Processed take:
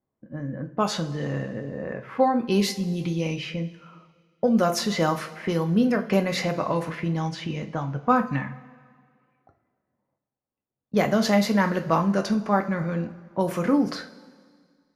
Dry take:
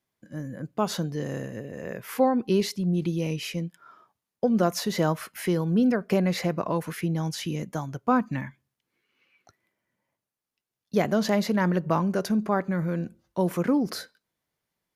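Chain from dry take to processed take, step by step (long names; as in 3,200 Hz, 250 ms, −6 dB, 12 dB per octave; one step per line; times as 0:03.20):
low-pass that shuts in the quiet parts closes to 790 Hz, open at −20 dBFS
dynamic equaliser 310 Hz, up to −4 dB, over −36 dBFS, Q 0.92
coupled-rooms reverb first 0.28 s, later 1.9 s, from −18 dB, DRR 4 dB
level +3 dB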